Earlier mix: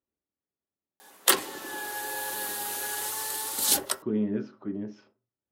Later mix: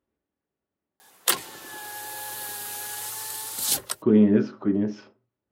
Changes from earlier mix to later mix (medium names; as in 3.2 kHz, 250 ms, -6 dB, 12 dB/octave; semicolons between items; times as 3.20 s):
speech +10.5 dB; background: send off